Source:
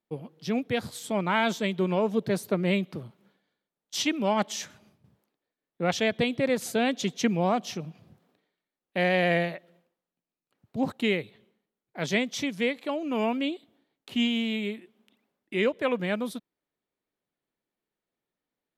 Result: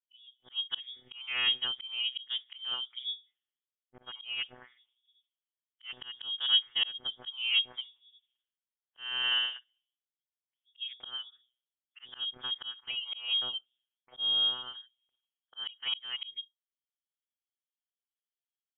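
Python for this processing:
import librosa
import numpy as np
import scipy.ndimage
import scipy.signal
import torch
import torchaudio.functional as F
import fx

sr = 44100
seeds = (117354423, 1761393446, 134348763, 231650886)

y = fx.noise_reduce_blind(x, sr, reduce_db=15)
y = fx.dynamic_eq(y, sr, hz=150.0, q=1.9, threshold_db=-41.0, ratio=4.0, max_db=-3)
y = fx.vocoder(y, sr, bands=32, carrier='saw', carrier_hz=125.0)
y = fx.freq_invert(y, sr, carrier_hz=3500)
y = fx.auto_swell(y, sr, attack_ms=313.0)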